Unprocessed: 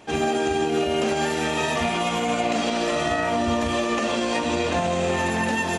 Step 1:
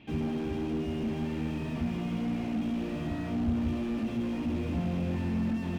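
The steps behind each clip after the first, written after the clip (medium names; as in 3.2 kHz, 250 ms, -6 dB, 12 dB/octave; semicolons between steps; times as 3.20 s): low-pass 3 kHz 24 dB/octave; high-order bell 840 Hz -15 dB 2.5 oct; slew-rate limiter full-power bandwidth 11 Hz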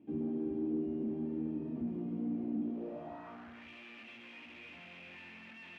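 band-pass sweep 310 Hz -> 2.4 kHz, 2.63–3.69 s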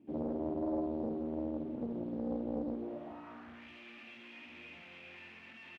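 doubling 48 ms -5 dB; loudspeaker Doppler distortion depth 0.78 ms; trim -1.5 dB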